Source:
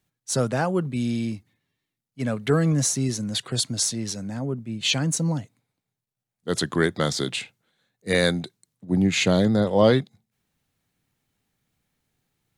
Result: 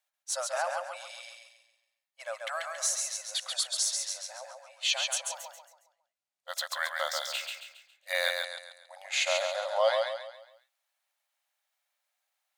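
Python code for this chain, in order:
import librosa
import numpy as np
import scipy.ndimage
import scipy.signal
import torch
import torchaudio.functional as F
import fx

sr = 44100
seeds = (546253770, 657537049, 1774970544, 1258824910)

y = fx.brickwall_highpass(x, sr, low_hz=530.0)
y = fx.echo_feedback(y, sr, ms=137, feedback_pct=40, wet_db=-4.0)
y = fx.resample_linear(y, sr, factor=2, at=(5.35, 8.44))
y = y * 10.0 ** (-5.0 / 20.0)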